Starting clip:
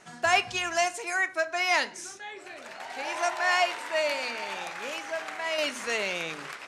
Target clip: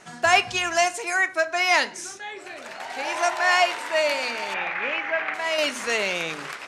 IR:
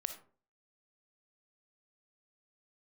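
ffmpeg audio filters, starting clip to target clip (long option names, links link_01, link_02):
-filter_complex "[0:a]asettb=1/sr,asplit=3[link_01][link_02][link_03];[link_01]atrim=end=4.544[link_04];[link_02]atrim=start=4.54:end=5.34,asetpts=PTS-STARTPTS,afade=type=in:duration=0.004:curve=qsin,afade=type=out:start_time=0.796:duration=0.004:curve=qsin,lowpass=frequency=2200:width_type=q:width=2.6[link_05];[link_03]atrim=start=5.336[link_06];[link_04][link_05]acrossfade=duration=0.004:curve1=hsin:curve2=qsin[link_07];[link_07][link_06]acrossfade=duration=0.004:curve1=qsin:curve2=hsin,volume=5dB"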